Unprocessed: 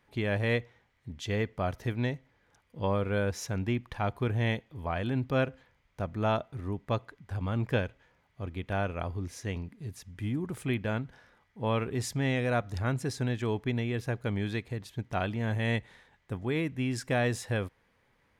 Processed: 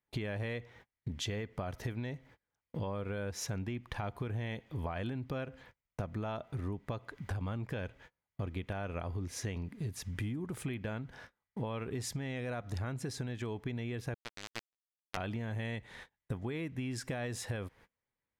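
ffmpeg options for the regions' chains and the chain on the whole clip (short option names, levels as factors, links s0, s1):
-filter_complex "[0:a]asettb=1/sr,asplit=3[s0][s1][s2];[s0]atrim=end=14.144[s3];[s1]atrim=start=14.14:end=15.17,asetpts=PTS-STARTPTS,afade=t=in:d=0.004:c=qsin,afade=t=out:st=1.026:d=0.004:c=qsin,lowshelf=f=170:g=-11,acrusher=bits=3:mix=0:aa=0.5[s4];[s2]atrim=start=15.166[s5];[s3][s4]acrossfade=d=0.004:c1=hsin:c2=qsin[s6];[s6][s5]acrossfade=d=0.004:c1=qsin:c2=hsin,agate=range=0.0224:threshold=0.00158:ratio=16:detection=peak,alimiter=level_in=1.06:limit=0.0631:level=0:latency=1:release=99,volume=0.944,acompressor=threshold=0.00562:ratio=10,volume=3.16"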